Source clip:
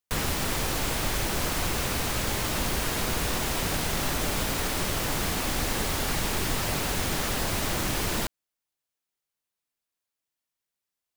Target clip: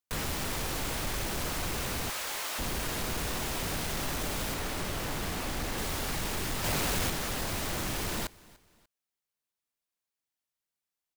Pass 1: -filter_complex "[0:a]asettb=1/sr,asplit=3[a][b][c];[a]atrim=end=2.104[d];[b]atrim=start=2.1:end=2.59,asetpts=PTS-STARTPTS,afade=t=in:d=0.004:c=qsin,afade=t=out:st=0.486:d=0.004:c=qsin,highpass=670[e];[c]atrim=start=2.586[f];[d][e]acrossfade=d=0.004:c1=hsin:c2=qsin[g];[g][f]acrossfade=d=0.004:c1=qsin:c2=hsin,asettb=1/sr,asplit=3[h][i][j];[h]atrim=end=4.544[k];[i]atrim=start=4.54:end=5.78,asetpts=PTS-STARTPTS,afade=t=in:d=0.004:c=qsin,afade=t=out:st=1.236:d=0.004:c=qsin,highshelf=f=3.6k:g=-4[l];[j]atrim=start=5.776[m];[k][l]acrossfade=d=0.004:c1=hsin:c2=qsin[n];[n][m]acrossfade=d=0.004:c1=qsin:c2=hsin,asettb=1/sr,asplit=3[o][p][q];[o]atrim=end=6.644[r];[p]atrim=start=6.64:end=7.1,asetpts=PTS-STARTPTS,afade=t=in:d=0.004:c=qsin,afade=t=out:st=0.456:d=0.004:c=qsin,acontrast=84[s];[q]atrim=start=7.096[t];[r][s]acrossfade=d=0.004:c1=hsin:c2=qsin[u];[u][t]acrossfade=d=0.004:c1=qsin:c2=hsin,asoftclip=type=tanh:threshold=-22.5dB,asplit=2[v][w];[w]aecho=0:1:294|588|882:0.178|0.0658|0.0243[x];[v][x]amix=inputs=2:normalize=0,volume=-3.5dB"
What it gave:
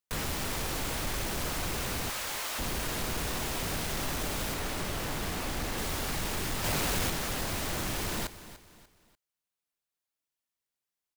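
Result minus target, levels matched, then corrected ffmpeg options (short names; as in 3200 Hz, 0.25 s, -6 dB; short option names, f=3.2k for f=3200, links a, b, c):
echo-to-direct +8 dB
-filter_complex "[0:a]asettb=1/sr,asplit=3[a][b][c];[a]atrim=end=2.104[d];[b]atrim=start=2.1:end=2.59,asetpts=PTS-STARTPTS,afade=t=in:d=0.004:c=qsin,afade=t=out:st=0.486:d=0.004:c=qsin,highpass=670[e];[c]atrim=start=2.586[f];[d][e]acrossfade=d=0.004:c1=hsin:c2=qsin[g];[g][f]acrossfade=d=0.004:c1=qsin:c2=hsin,asettb=1/sr,asplit=3[h][i][j];[h]atrim=end=4.544[k];[i]atrim=start=4.54:end=5.78,asetpts=PTS-STARTPTS,afade=t=in:d=0.004:c=qsin,afade=t=out:st=1.236:d=0.004:c=qsin,highshelf=f=3.6k:g=-4[l];[j]atrim=start=5.776[m];[k][l]acrossfade=d=0.004:c1=hsin:c2=qsin[n];[n][m]acrossfade=d=0.004:c1=qsin:c2=hsin,asettb=1/sr,asplit=3[o][p][q];[o]atrim=end=6.644[r];[p]atrim=start=6.64:end=7.1,asetpts=PTS-STARTPTS,afade=t=in:d=0.004:c=qsin,afade=t=out:st=0.456:d=0.004:c=qsin,acontrast=84[s];[q]atrim=start=7.096[t];[r][s]acrossfade=d=0.004:c1=hsin:c2=qsin[u];[u][t]acrossfade=d=0.004:c1=qsin:c2=hsin,asoftclip=type=tanh:threshold=-22.5dB,asplit=2[v][w];[w]aecho=0:1:294|588:0.0708|0.0262[x];[v][x]amix=inputs=2:normalize=0,volume=-3.5dB"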